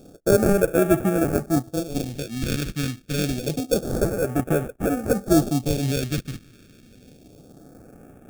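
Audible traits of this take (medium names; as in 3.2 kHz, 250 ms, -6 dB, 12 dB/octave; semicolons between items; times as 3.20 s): aliases and images of a low sample rate 1 kHz, jitter 0%; phasing stages 2, 0.27 Hz, lowest notch 730–4100 Hz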